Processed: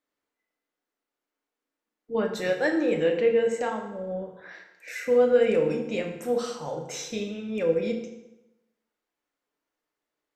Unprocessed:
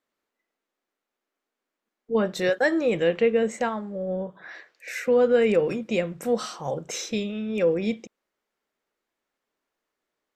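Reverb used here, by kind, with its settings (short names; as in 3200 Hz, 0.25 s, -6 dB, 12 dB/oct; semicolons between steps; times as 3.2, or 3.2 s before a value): FDN reverb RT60 0.96 s, low-frequency decay 1×, high-frequency decay 0.8×, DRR 2 dB; gain -5 dB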